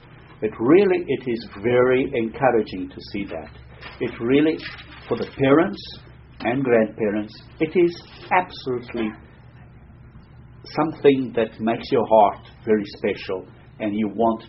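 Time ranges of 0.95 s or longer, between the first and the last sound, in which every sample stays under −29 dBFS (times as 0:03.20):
0:09.15–0:10.71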